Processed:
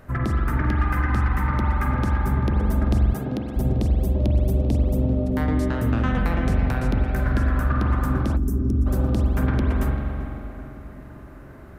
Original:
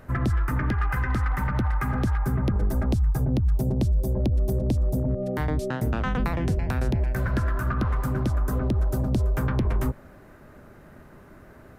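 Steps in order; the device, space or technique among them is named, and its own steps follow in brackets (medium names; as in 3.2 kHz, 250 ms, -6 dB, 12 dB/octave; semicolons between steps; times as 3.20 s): dub delay into a spring reverb (filtered feedback delay 391 ms, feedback 65%, low-pass 1.7 kHz, level -12 dB; spring tank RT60 2.5 s, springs 43 ms, chirp 60 ms, DRR 0.5 dB); 3.13–3.56 s: high-pass 170 Hz 12 dB/octave; 8.37–8.86 s: time-frequency box 440–5100 Hz -18 dB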